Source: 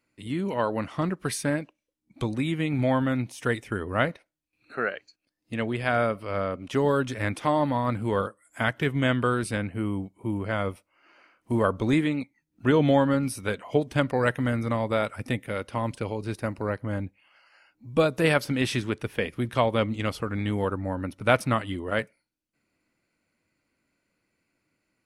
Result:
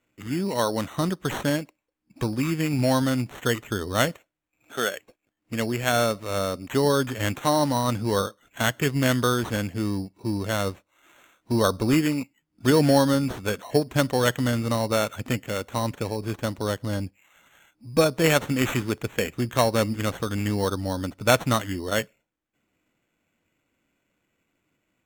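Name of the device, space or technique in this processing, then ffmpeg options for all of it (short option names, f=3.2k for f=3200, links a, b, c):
crushed at another speed: -af "asetrate=22050,aresample=44100,acrusher=samples=18:mix=1:aa=0.000001,asetrate=88200,aresample=44100,volume=2dB"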